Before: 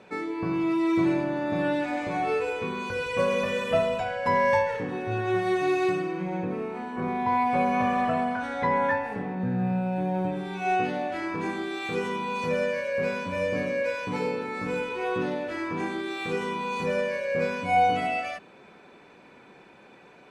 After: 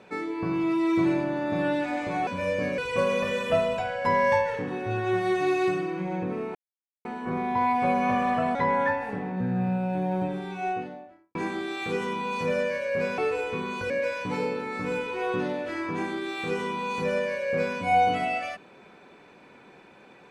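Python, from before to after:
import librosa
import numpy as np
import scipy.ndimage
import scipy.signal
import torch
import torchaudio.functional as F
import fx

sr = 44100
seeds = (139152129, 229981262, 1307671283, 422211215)

y = fx.studio_fade_out(x, sr, start_s=10.28, length_s=1.1)
y = fx.edit(y, sr, fx.swap(start_s=2.27, length_s=0.72, other_s=13.21, other_length_s=0.51),
    fx.insert_silence(at_s=6.76, length_s=0.5),
    fx.cut(start_s=8.26, length_s=0.32), tone=tone)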